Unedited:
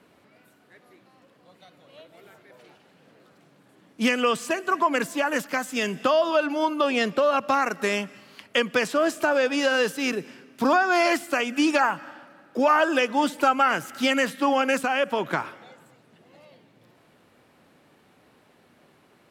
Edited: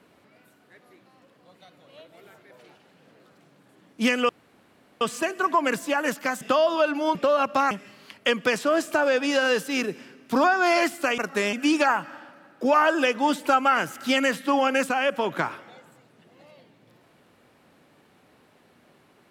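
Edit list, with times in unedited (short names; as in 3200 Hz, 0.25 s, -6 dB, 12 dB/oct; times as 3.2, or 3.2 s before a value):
4.29 insert room tone 0.72 s
5.69–5.96 cut
6.7–7.09 cut
7.65–8 move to 11.47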